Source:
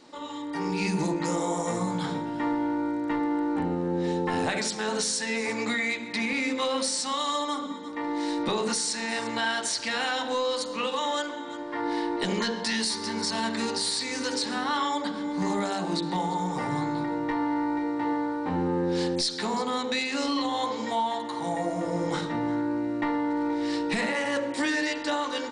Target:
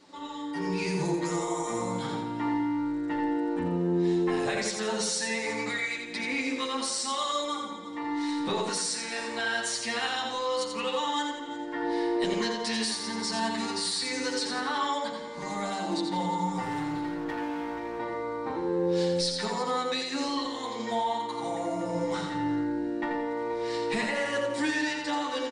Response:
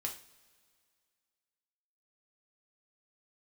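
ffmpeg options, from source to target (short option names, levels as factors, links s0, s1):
-filter_complex "[0:a]aecho=1:1:86|172|258|344|430:0.531|0.218|0.0892|0.0366|0.015,asettb=1/sr,asplit=3[s0][s1][s2];[s0]atrim=end=16.634[s3];[s1]atrim=start=16.63:end=17.99,asetpts=PTS-STARTPTS,afade=t=in:d=0.004:c=qsin,afade=t=out:st=1.356:d=0.004:c=qsin,volume=20,asoftclip=hard,volume=0.0501[s4];[s2]atrim=start=17.986[s5];[s3][s4]acrossfade=d=0.004:c1=hsin:c2=qsin[s6];[s6][s5]acrossfade=d=0.004:c1=qsin:c2=hsin,asplit=2[s7][s8];[s8]adelay=7.4,afreqshift=-0.36[s9];[s7][s9]amix=inputs=2:normalize=1"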